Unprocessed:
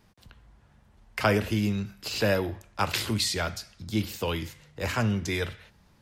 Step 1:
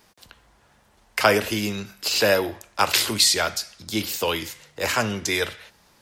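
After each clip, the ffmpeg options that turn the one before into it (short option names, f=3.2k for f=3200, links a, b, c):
-af "bass=f=250:g=-13,treble=f=4k:g=5,volume=7dB"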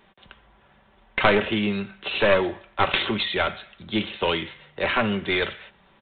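-af "aecho=1:1:5.2:0.39,aresample=8000,aeval=exprs='clip(val(0),-1,0.0841)':c=same,aresample=44100,volume=1.5dB"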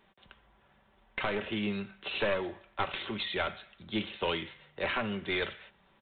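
-af "alimiter=limit=-10dB:level=0:latency=1:release=382,volume=-8dB"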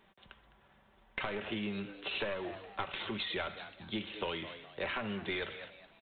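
-filter_complex "[0:a]asplit=4[a][b][c][d];[b]adelay=208,afreqshift=98,volume=-17dB[e];[c]adelay=416,afreqshift=196,volume=-26.1dB[f];[d]adelay=624,afreqshift=294,volume=-35.2dB[g];[a][e][f][g]amix=inputs=4:normalize=0,acompressor=threshold=-34dB:ratio=4"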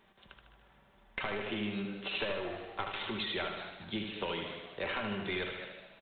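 -af "aecho=1:1:76|152|228|304|380|456|532:0.501|0.286|0.163|0.0928|0.0529|0.0302|0.0172"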